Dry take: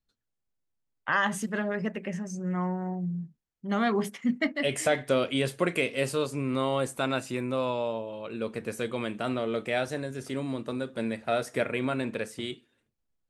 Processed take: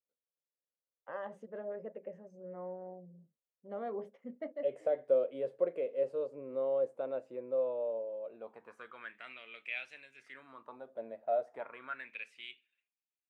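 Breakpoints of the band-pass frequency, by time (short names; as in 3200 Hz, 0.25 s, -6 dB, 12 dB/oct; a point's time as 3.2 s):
band-pass, Q 5.9
8.19 s 530 Hz
9.39 s 2500 Hz
10.14 s 2500 Hz
10.92 s 640 Hz
11.44 s 640 Hz
12.17 s 2500 Hz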